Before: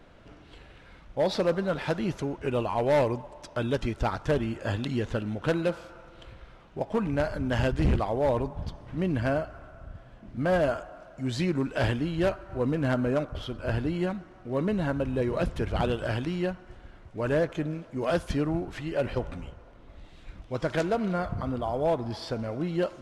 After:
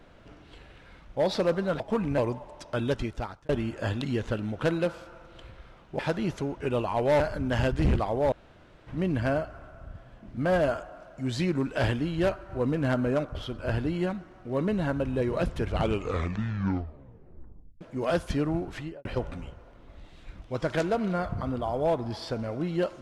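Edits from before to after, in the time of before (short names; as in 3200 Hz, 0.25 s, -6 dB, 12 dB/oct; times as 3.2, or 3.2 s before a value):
1.8–3.01 swap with 6.82–7.2
3.76–4.32 fade out linear
8.32–8.87 room tone
15.68 tape stop 2.13 s
18.77–19.05 studio fade out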